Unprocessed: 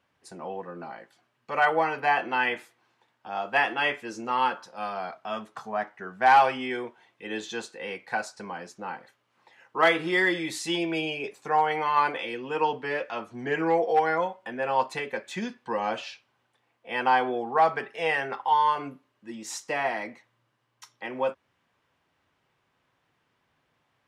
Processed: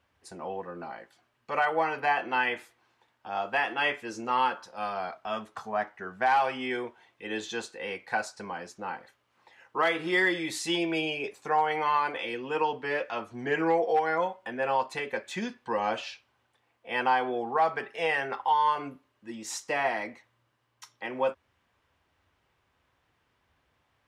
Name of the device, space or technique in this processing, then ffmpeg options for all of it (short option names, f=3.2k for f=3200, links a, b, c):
car stereo with a boomy subwoofer: -af "lowshelf=f=100:t=q:w=1.5:g=8.5,alimiter=limit=-15.5dB:level=0:latency=1:release=295"